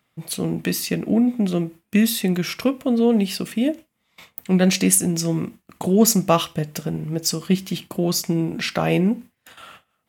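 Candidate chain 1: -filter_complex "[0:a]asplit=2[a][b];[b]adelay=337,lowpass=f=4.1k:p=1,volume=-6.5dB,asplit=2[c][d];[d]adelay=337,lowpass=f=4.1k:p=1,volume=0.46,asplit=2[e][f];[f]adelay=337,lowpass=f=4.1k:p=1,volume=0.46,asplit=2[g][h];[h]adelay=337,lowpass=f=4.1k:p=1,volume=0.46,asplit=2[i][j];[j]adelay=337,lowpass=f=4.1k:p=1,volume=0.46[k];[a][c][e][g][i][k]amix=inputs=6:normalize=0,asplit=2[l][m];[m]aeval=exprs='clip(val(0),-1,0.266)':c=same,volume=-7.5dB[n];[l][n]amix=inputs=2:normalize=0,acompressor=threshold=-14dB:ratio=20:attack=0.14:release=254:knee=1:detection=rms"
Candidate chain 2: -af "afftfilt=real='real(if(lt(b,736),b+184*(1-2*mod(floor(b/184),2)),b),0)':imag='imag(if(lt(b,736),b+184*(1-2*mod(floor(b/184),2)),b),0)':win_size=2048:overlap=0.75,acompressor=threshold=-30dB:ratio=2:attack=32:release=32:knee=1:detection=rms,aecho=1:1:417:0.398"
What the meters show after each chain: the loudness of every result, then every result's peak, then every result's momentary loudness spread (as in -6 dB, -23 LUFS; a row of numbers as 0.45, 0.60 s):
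-23.0, -23.0 LUFS; -12.0, -9.0 dBFS; 4, 9 LU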